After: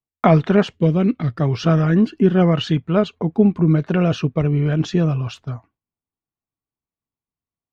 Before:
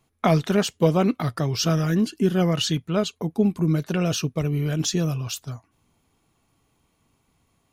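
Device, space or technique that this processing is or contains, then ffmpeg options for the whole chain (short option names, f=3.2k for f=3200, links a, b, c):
hearing-loss simulation: -filter_complex "[0:a]lowpass=2.2k,agate=range=-33dB:threshold=-42dB:ratio=3:detection=peak,asplit=3[a][b][c];[a]afade=t=out:st=0.74:d=0.02[d];[b]equalizer=f=890:w=0.79:g=-14,afade=t=in:st=0.74:d=0.02,afade=t=out:st=1.4:d=0.02[e];[c]afade=t=in:st=1.4:d=0.02[f];[d][e][f]amix=inputs=3:normalize=0,volume=6dB"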